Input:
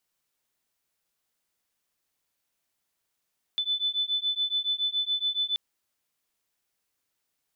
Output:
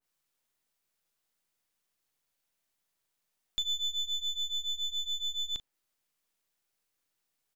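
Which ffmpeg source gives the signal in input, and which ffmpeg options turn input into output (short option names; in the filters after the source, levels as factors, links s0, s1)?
-f lavfi -i "aevalsrc='0.0376*(sin(2*PI*3500*t)+sin(2*PI*3507.1*t))':d=1.98:s=44100"
-filter_complex "[0:a]aeval=exprs='if(lt(val(0),0),0.447*val(0),val(0))':c=same,asplit=2[s0][s1];[s1]adelay=39,volume=0.211[s2];[s0][s2]amix=inputs=2:normalize=0,adynamicequalizer=threshold=0.00631:dfrequency=2300:dqfactor=0.7:tfrequency=2300:tqfactor=0.7:attack=5:release=100:ratio=0.375:range=2:mode=cutabove:tftype=highshelf"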